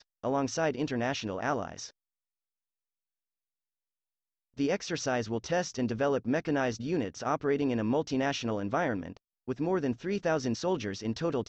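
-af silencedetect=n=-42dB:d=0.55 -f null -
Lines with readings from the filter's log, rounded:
silence_start: 1.88
silence_end: 4.58 | silence_duration: 2.70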